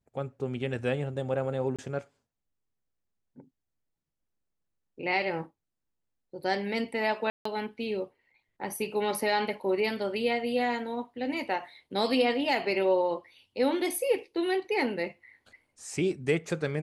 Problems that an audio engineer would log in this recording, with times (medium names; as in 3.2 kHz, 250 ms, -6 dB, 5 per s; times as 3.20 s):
1.76–1.79 s: dropout 26 ms
7.30–7.45 s: dropout 154 ms